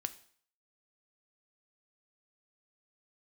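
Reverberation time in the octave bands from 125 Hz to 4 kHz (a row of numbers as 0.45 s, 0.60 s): 0.50 s, 0.50 s, 0.50 s, 0.55 s, 0.55 s, 0.50 s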